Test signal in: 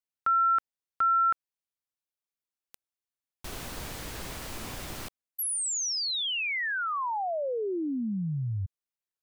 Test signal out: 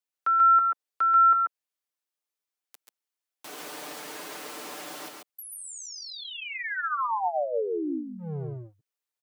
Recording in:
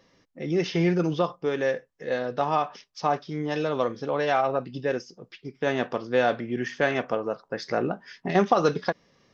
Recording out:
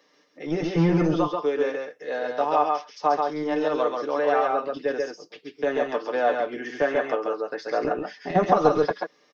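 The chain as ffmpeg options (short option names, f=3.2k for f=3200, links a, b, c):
-filter_complex "[0:a]aecho=1:1:6.7:0.61,acrossover=split=250|890|1500[a][b][c][d];[a]acrusher=bits=3:mix=0:aa=0.5[e];[d]acompressor=threshold=-42dB:ratio=6:attack=12:release=94[f];[e][b][c][f]amix=inputs=4:normalize=0,aecho=1:1:128|137:0.224|0.668"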